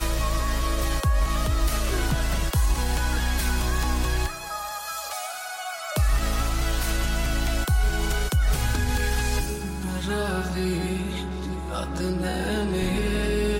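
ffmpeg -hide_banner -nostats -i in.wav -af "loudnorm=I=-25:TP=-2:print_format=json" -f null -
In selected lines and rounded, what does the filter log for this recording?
"input_i" : "-26.5",
"input_tp" : "-12.4",
"input_lra" : "2.6",
"input_thresh" : "-36.5",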